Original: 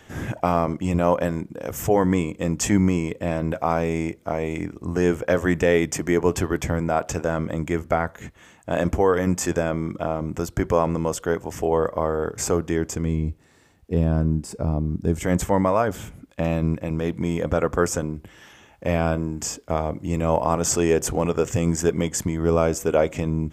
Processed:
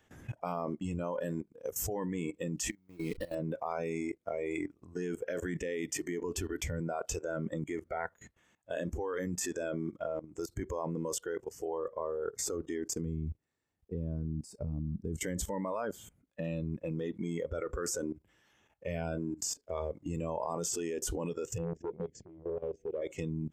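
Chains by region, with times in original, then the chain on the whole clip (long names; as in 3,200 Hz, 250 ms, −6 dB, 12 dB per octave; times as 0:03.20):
0:02.70–0:03.35: hold until the input has moved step −34 dBFS + compressor whose output falls as the input rises −27 dBFS, ratio −0.5 + high-shelf EQ 5,400 Hz −4 dB
0:21.58–0:23.02: Butterworth band-reject 1,100 Hz, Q 0.68 + head-to-tape spacing loss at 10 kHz 34 dB + saturating transformer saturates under 790 Hz
whole clip: noise reduction from a noise print of the clip's start 15 dB; brickwall limiter −14 dBFS; output level in coarse steps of 17 dB; level −1 dB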